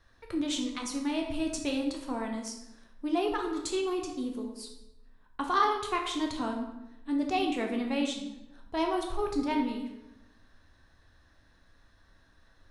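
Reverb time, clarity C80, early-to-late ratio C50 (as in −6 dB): 0.95 s, 8.0 dB, 5.5 dB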